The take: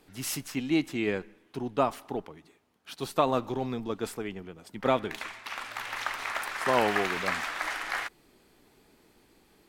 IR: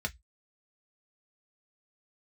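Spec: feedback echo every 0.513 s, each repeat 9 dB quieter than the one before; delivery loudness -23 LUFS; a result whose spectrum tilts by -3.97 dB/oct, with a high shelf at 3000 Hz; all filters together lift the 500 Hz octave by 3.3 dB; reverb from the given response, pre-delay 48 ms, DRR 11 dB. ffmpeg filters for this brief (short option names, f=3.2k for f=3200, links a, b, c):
-filter_complex "[0:a]equalizer=f=500:t=o:g=4,highshelf=f=3k:g=3.5,aecho=1:1:513|1026|1539|2052:0.355|0.124|0.0435|0.0152,asplit=2[a][b];[1:a]atrim=start_sample=2205,adelay=48[c];[b][c]afir=irnorm=-1:irlink=0,volume=-15dB[d];[a][d]amix=inputs=2:normalize=0,volume=5.5dB"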